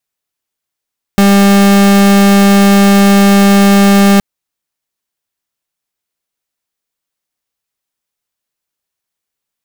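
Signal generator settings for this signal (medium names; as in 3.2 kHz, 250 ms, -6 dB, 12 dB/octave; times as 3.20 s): pulse 199 Hz, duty 41% -6 dBFS 3.02 s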